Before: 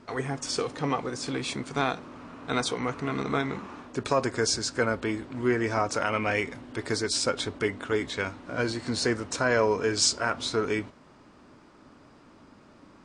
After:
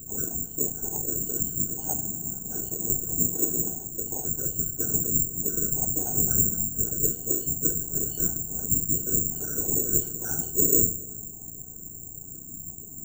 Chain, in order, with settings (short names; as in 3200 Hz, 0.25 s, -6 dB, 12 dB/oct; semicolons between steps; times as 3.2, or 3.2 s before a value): repeated pitch sweeps -5 st, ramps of 0.209 s; tilt shelf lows +10 dB, about 1300 Hz; reverse; compressor 6:1, threshold -27 dBFS, peak gain reduction 14.5 dB; reverse; octave resonator F#, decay 0.37 s; hum 60 Hz, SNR 15 dB; whisperiser; reverb RT60 1.7 s, pre-delay 7 ms, DRR 14 dB; careless resampling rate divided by 6×, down none, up zero stuff; gain +8 dB